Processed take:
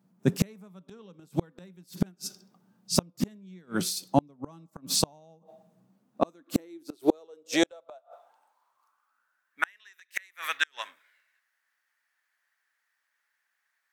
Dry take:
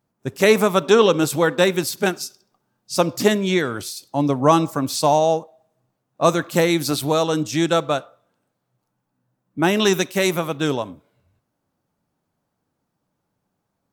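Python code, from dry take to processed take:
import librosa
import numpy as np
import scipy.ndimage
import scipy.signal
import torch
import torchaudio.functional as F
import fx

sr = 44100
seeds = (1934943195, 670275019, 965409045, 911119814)

y = fx.filter_sweep_highpass(x, sr, from_hz=180.0, to_hz=1800.0, start_s=5.8, end_s=9.68, q=6.8)
y = fx.gate_flip(y, sr, shuts_db=-9.0, range_db=-39)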